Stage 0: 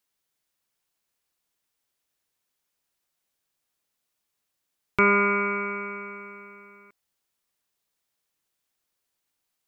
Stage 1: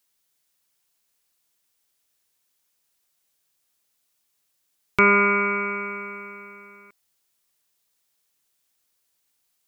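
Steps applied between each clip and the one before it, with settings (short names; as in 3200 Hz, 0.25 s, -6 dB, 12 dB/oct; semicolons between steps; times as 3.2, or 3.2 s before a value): high shelf 3300 Hz +7 dB; gain +2 dB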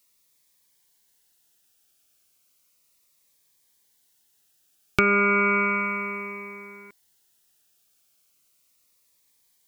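compressor 6:1, threshold -21 dBFS, peak gain reduction 9 dB; cascading phaser falling 0.34 Hz; gain +6 dB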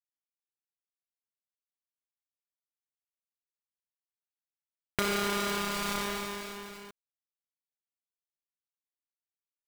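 switching dead time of 0.23 ms; in parallel at -2 dB: negative-ratio compressor -34 dBFS, ratio -0.5; on the sum: gain -6 dB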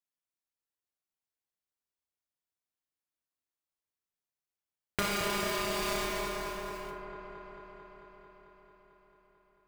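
dark delay 0.222 s, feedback 77%, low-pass 1300 Hz, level -4 dB; plate-style reverb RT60 0.79 s, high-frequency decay 0.55×, DRR 3 dB; gain -2 dB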